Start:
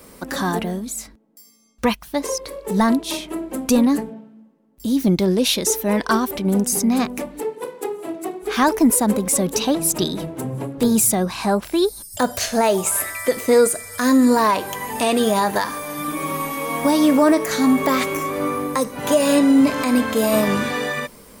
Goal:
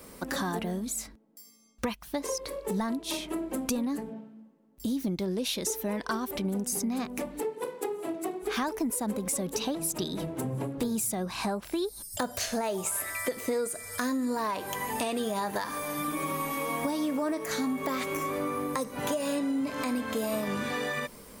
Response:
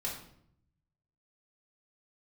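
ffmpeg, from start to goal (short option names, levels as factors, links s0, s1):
-af "acompressor=threshold=0.0631:ratio=6,volume=0.631"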